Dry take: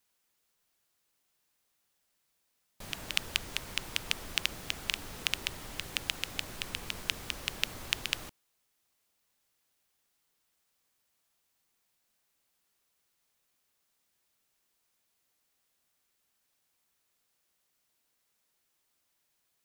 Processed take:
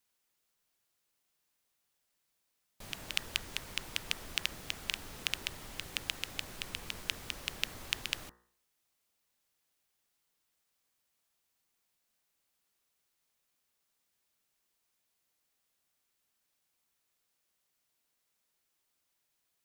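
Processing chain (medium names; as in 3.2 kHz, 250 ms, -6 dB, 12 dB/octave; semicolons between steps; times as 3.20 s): de-hum 59.05 Hz, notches 33; trim -3 dB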